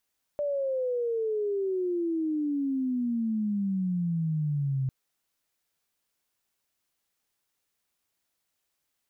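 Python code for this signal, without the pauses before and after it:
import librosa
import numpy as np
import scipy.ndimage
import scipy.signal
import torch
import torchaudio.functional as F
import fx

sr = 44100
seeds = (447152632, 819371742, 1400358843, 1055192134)

y = fx.chirp(sr, length_s=4.5, from_hz=590.0, to_hz=130.0, law='logarithmic', from_db=-26.0, to_db=-25.0)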